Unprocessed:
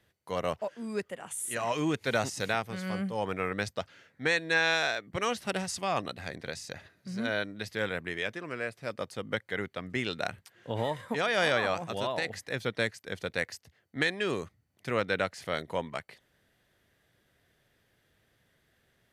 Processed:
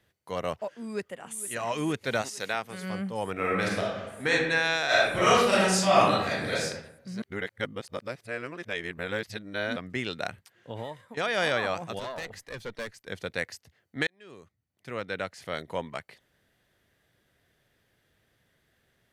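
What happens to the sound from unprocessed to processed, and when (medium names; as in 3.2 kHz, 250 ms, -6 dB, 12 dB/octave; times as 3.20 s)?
0.78–1.46 s: echo throw 460 ms, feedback 85%, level -15 dB
2.21–2.82 s: high-pass 610 Hz -> 210 Hz 6 dB/octave
3.32–4.32 s: reverb throw, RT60 1.2 s, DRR -4 dB
4.86–6.64 s: reverb throw, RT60 0.83 s, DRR -10.5 dB
7.22–9.76 s: reverse
10.26–11.17 s: fade out linear, to -14.5 dB
11.99–13.08 s: valve stage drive 29 dB, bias 0.65
14.07–15.79 s: fade in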